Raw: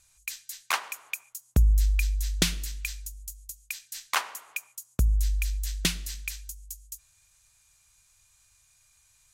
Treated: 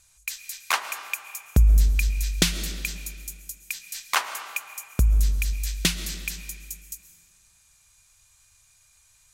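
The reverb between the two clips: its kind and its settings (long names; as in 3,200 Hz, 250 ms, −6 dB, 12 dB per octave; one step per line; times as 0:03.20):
comb and all-pass reverb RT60 2.1 s, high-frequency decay 0.8×, pre-delay 90 ms, DRR 10.5 dB
level +3.5 dB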